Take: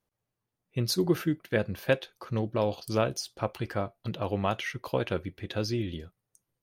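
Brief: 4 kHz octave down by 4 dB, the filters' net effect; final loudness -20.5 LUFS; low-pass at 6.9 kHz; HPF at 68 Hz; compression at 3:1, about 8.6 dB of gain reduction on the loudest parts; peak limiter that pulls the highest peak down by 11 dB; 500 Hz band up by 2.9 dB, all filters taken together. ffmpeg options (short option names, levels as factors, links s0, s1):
-af "highpass=68,lowpass=6900,equalizer=f=500:t=o:g=3.5,equalizer=f=4000:t=o:g=-4.5,acompressor=threshold=0.0355:ratio=3,volume=7.5,alimiter=limit=0.447:level=0:latency=1"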